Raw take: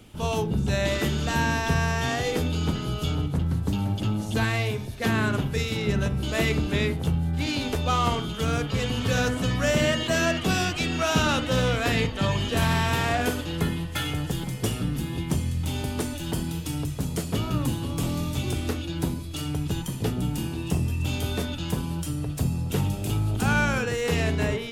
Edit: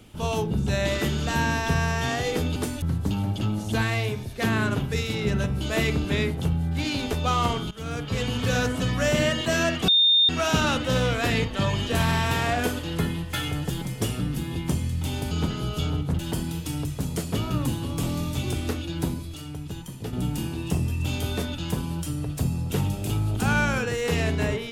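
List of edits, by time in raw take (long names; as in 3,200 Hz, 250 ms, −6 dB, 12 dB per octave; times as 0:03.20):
0:02.56–0:03.44: swap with 0:15.93–0:16.19
0:08.33–0:08.84: fade in, from −14.5 dB
0:10.50–0:10.91: beep over 3,640 Hz −15 dBFS
0:19.34–0:20.13: clip gain −7 dB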